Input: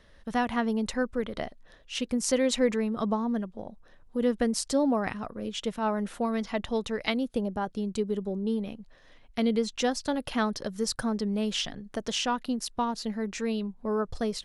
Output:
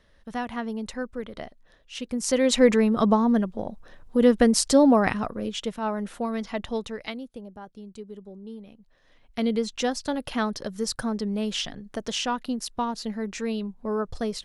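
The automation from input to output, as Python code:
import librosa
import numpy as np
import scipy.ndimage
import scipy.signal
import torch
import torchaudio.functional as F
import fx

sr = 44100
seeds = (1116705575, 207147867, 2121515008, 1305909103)

y = fx.gain(x, sr, db=fx.line((1.98, -3.5), (2.69, 8.0), (5.19, 8.0), (5.75, 0.0), (6.76, 0.0), (7.38, -11.0), (8.69, -11.0), (9.44, 1.0)))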